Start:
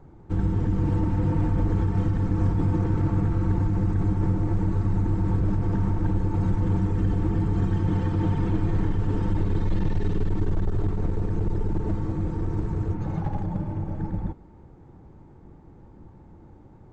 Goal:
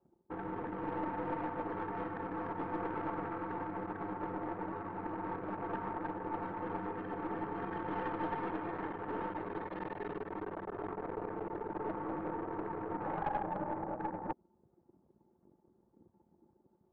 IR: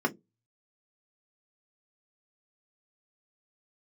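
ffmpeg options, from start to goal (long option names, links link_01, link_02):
-af "anlmdn=1.58,areverse,acompressor=threshold=-31dB:ratio=10,areverse,highpass=630,lowpass=2100,aeval=exprs='(tanh(100*val(0)+0.45)-tanh(0.45))/100':channel_layout=same,volume=15dB"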